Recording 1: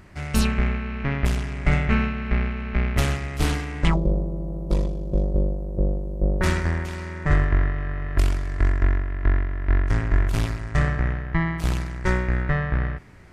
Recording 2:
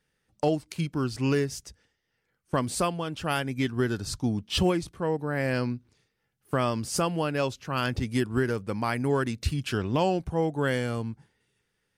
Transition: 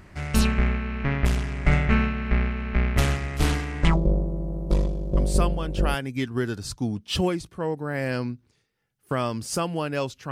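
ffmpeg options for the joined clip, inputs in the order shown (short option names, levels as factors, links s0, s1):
-filter_complex "[0:a]apad=whole_dur=10.31,atrim=end=10.31,atrim=end=5.95,asetpts=PTS-STARTPTS[s0];[1:a]atrim=start=2.59:end=7.73,asetpts=PTS-STARTPTS[s1];[s0][s1]acrossfade=d=0.78:c1=log:c2=log"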